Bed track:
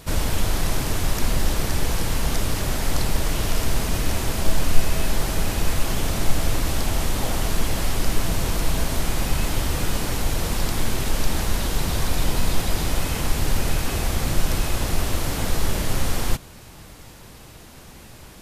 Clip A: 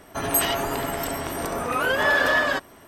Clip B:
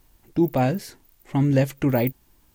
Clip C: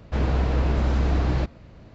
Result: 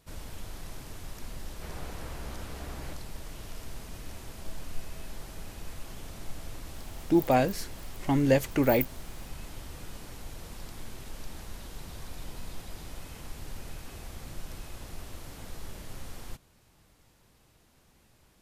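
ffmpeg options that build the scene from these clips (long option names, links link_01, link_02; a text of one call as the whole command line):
ffmpeg -i bed.wav -i cue0.wav -i cue1.wav -i cue2.wav -filter_complex "[0:a]volume=-19.5dB[link_01];[3:a]lowshelf=frequency=430:gain=-10[link_02];[2:a]bass=frequency=250:gain=-9,treble=frequency=4000:gain=1[link_03];[link_02]atrim=end=1.94,asetpts=PTS-STARTPTS,volume=-12.5dB,afade=type=in:duration=0.004:curve=hsin,afade=type=out:start_time=1.936:duration=0.004:curve=hsin,adelay=1490[link_04];[link_03]atrim=end=2.54,asetpts=PTS-STARTPTS,afade=type=in:duration=0.004:curve=hsin,afade=type=out:start_time=2.536:duration=0.004:curve=hsin,adelay=297234S[link_05];[link_01][link_04][link_05]amix=inputs=3:normalize=0" out.wav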